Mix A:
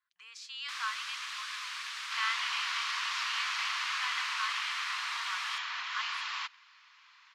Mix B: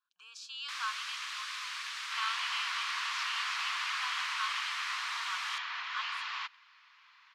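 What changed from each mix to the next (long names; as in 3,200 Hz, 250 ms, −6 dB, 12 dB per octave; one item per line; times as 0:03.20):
speech: add Butterworth band-reject 2,000 Hz, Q 2.3
second sound: add high-frequency loss of the air 100 metres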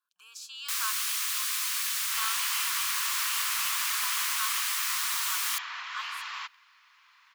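first sound: add high-shelf EQ 3,200 Hz +10 dB
master: remove Chebyshev low-pass filter 4,400 Hz, order 2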